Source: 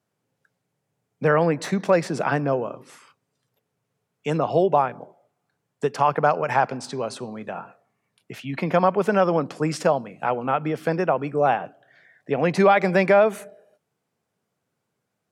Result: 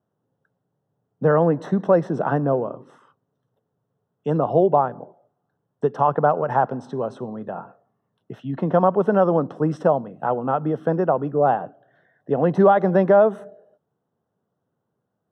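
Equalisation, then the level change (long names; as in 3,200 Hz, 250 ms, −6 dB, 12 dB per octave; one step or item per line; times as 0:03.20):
moving average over 19 samples
+3.0 dB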